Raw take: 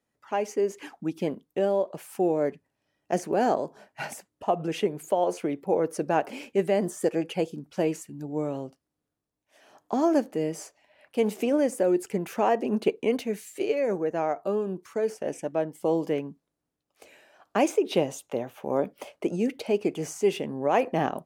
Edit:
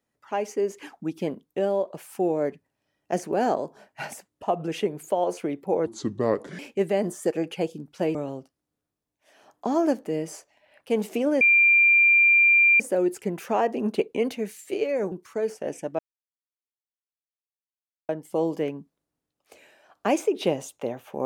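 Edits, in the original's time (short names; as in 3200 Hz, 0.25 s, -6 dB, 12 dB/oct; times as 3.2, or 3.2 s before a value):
5.86–6.37 speed 70%
7.93–8.42 cut
11.68 add tone 2380 Hz -14 dBFS 1.39 s
14–14.72 cut
15.59 insert silence 2.10 s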